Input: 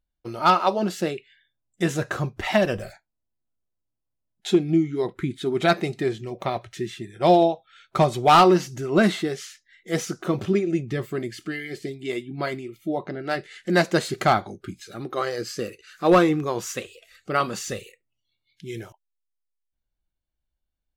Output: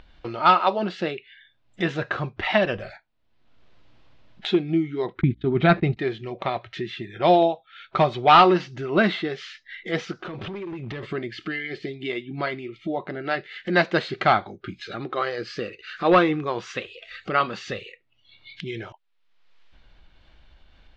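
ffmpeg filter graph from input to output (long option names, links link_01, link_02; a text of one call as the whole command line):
ffmpeg -i in.wav -filter_complex "[0:a]asettb=1/sr,asplit=3[link_01][link_02][link_03];[link_01]atrim=end=5.214[link_04];[link_02]atrim=start=5.21:end=5.97,asetpts=PTS-STARTPTS,afade=type=in:duration=0.004:curve=qsin,afade=type=out:start_time=0.756:duration=0.004:curve=qsin,agate=range=-31dB:threshold=-35dB:ratio=16:release=100:detection=peak,bass=frequency=250:gain=14,treble=frequency=4000:gain=-11,aeval=exprs='val(0)+0.00316*(sin(2*PI*60*n/s)+sin(2*PI*2*60*n/s)/2+sin(2*PI*3*60*n/s)/3+sin(2*PI*4*60*n/s)/4+sin(2*PI*5*60*n/s)/5)':channel_layout=same[link_05];[link_03]atrim=start=5.966[link_06];[link_04][link_05]acrossfade=duration=0.004:curve1=hsin:curve2=qsin[link_07];[link_07][link_06]acrossfade=duration=0.004:curve1=qsin:curve2=hsin,asettb=1/sr,asplit=3[link_08][link_09][link_10];[link_08]atrim=end=10.124[link_11];[link_09]atrim=start=10.12:end=11.03,asetpts=PTS-STARTPTS,afade=type=in:duration=0.004:curve=qsin,afade=type=out:start_time=0.906:duration=0.004:curve=qsin,acompressor=threshold=-32dB:ratio=16:attack=3.2:release=140:knee=1:detection=peak,asoftclip=type=hard:threshold=-33.5dB[link_12];[link_10]atrim=start=11.026[link_13];[link_11][link_12]acrossfade=duration=0.004:curve1=hsin:curve2=qsin[link_14];[link_14][link_13]acrossfade=duration=0.004:curve1=qsin:curve2=hsin,lowpass=frequency=3800:width=0.5412,lowpass=frequency=3800:width=1.3066,tiltshelf=frequency=690:gain=-3.5,acompressor=mode=upward:threshold=-26dB:ratio=2.5" out.wav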